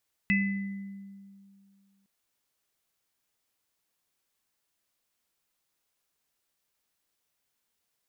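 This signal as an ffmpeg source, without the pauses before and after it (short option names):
-f lavfi -i "aevalsrc='0.0708*pow(10,-3*t/2.32)*sin(2*PI*197*t)+0.0668*pow(10,-3*t/0.96)*sin(2*PI*2010*t)+0.0398*pow(10,-3*t/0.42)*sin(2*PI*2610*t)':d=1.76:s=44100"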